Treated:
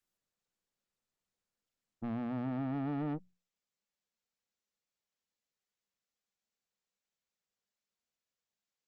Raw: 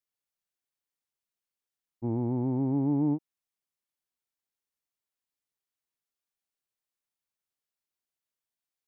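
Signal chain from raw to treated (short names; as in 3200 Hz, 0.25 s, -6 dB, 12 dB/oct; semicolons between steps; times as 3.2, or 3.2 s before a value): thirty-one-band EQ 200 Hz +12 dB, 315 Hz -6 dB, 500 Hz +8 dB, 1000 Hz -3 dB; soft clip -33 dBFS, distortion -7 dB; notches 60/120/180 Hz; Opus 24 kbps 48000 Hz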